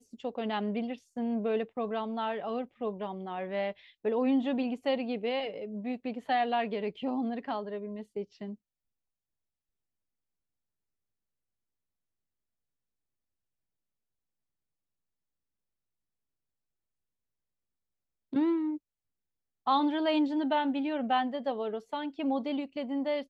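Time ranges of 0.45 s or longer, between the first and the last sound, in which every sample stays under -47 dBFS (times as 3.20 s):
8.55–18.33 s
18.77–19.66 s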